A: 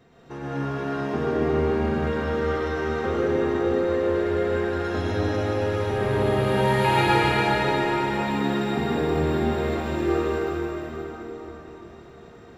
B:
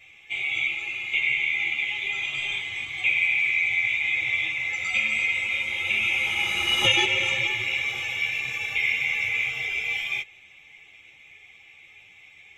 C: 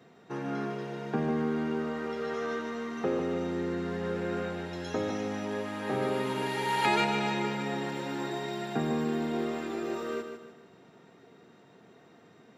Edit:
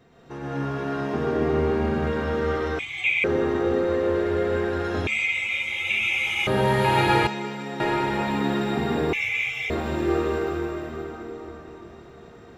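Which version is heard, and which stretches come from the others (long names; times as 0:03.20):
A
0:02.79–0:03.24: punch in from B
0:05.07–0:06.47: punch in from B
0:07.27–0:07.80: punch in from C
0:09.13–0:09.70: punch in from B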